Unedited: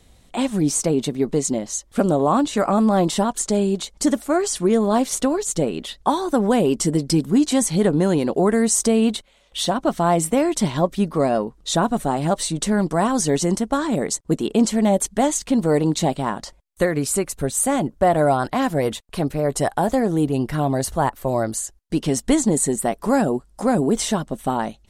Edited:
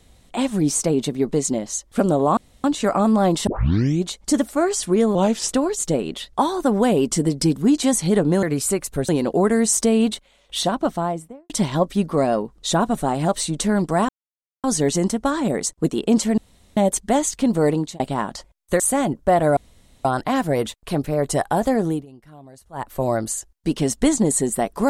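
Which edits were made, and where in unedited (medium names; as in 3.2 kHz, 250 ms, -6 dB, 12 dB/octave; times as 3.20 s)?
2.37 s: insert room tone 0.27 s
3.20 s: tape start 0.58 s
4.88–5.17 s: speed 86%
9.71–10.52 s: studio fade out
13.11 s: insert silence 0.55 s
14.85 s: insert room tone 0.39 s
15.79–16.08 s: fade out
16.88–17.54 s: move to 8.11 s
18.31 s: insert room tone 0.48 s
20.12–21.19 s: dip -23 dB, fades 0.20 s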